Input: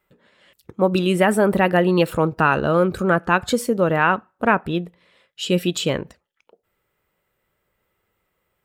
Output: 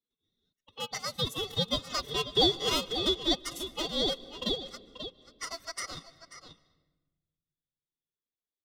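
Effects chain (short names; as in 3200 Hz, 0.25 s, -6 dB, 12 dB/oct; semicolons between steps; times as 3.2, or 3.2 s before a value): Wiener smoothing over 15 samples; Doppler pass-by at 2.49, 6 m/s, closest 3.9 m; elliptic high-pass 1100 Hz, stop band 50 dB; notch 2300 Hz, Q 8.2; gate with hold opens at -55 dBFS; comb 2.3 ms, depth 95%; in parallel at +1.5 dB: compressor 12:1, threshold -38 dBFS, peak gain reduction 24.5 dB; on the sum: outdoor echo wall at 92 m, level -12 dB; formant-preserving pitch shift +10.5 st; ring modulator 1900 Hz; on a send at -21 dB: reverb RT60 1.2 s, pre-delay 0.129 s; on the sum: three-band squash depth 40%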